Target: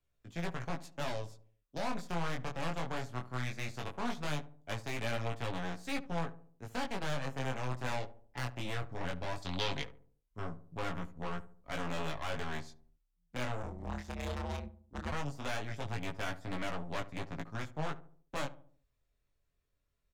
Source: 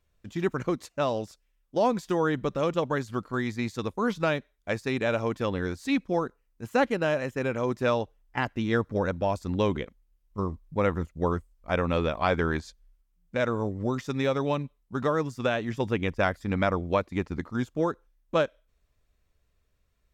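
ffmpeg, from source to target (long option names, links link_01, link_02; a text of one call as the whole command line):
ffmpeg -i in.wav -filter_complex "[0:a]aeval=exprs='0.299*(cos(1*acos(clip(val(0)/0.299,-1,1)))-cos(1*PI/2))+0.0299*(cos(4*acos(clip(val(0)/0.299,-1,1)))-cos(4*PI/2))+0.0168*(cos(5*acos(clip(val(0)/0.299,-1,1)))-cos(5*PI/2))+0.0376*(cos(7*acos(clip(val(0)/0.299,-1,1)))-cos(7*PI/2))+0.0133*(cos(8*acos(clip(val(0)/0.299,-1,1)))-cos(8*PI/2))':channel_layout=same,aecho=1:1:7.2:0.3,acrossover=split=250|490|2700[link_01][link_02][link_03][link_04];[link_02]acompressor=threshold=-47dB:ratio=6[link_05];[link_01][link_05][link_03][link_04]amix=inputs=4:normalize=0,alimiter=limit=-17.5dB:level=0:latency=1:release=19,asoftclip=type=tanh:threshold=-31dB,asettb=1/sr,asplit=3[link_06][link_07][link_08];[link_06]atrim=end=9.424[link_09];[link_07]atrim=start=9.42:end=9.82,asetpts=PTS-STARTPTS,afade=type=in:duration=0.004:curve=qsin,afade=type=out:start_time=0.396:duration=0.004:curve=qsin,equalizer=frequency=3800:width_type=o:width=1.4:gain=14.5[link_10];[link_08]atrim=start=9.816[link_11];[link_09][link_10]acrossfade=duration=0.004:curve1=hsin:curve2=qsin[link_12];[link_12][link_11]acrossfade=duration=0.004:curve1=qsin:curve2=hsin,flanger=delay=17:depth=7.4:speed=0.18,asplit=3[link_13][link_14][link_15];[link_13]afade=type=out:start_time=13.62:duration=0.02[link_16];[link_14]aeval=exprs='val(0)*sin(2*PI*82*n/s)':channel_layout=same,afade=type=in:start_time=13.62:duration=0.02,afade=type=out:start_time=15.11:duration=0.02[link_17];[link_15]afade=type=in:start_time=15.11:duration=0.02[link_18];[link_16][link_17][link_18]amix=inputs=3:normalize=0,asplit=2[link_19][link_20];[link_20]adelay=72,lowpass=frequency=880:poles=1,volume=-13.5dB,asplit=2[link_21][link_22];[link_22]adelay=72,lowpass=frequency=880:poles=1,volume=0.5,asplit=2[link_23][link_24];[link_24]adelay=72,lowpass=frequency=880:poles=1,volume=0.5,asplit=2[link_25][link_26];[link_26]adelay=72,lowpass=frequency=880:poles=1,volume=0.5,asplit=2[link_27][link_28];[link_28]adelay=72,lowpass=frequency=880:poles=1,volume=0.5[link_29];[link_19][link_21][link_23][link_25][link_27][link_29]amix=inputs=6:normalize=0,volume=1.5dB" out.wav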